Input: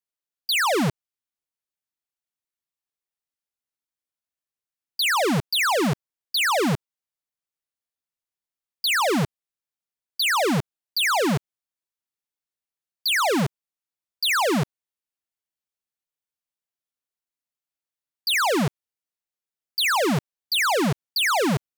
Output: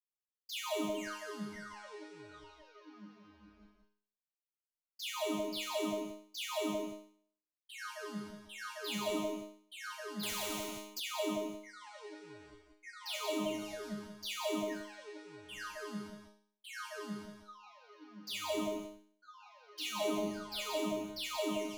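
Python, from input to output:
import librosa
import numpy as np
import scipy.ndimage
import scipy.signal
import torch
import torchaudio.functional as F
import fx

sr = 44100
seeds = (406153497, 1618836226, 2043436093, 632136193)

p1 = x + 0.62 * np.pad(x, (int(3.1 * sr / 1000.0), 0))[:len(x)]
p2 = fx.echo_pitch(p1, sr, ms=212, semitones=-7, count=3, db_per_echo=-6.0)
p3 = fx.env_flanger(p2, sr, rest_ms=7.2, full_db=-20.5)
p4 = fx.resonator_bank(p3, sr, root=56, chord='fifth', decay_s=0.53)
p5 = p4 + fx.echo_multitap(p4, sr, ms=(93, 176, 179), db=(-17.0, -6.0, -17.5), dry=0)
p6 = fx.spectral_comp(p5, sr, ratio=2.0, at=(10.23, 11.0))
y = p6 * librosa.db_to_amplitude(2.5)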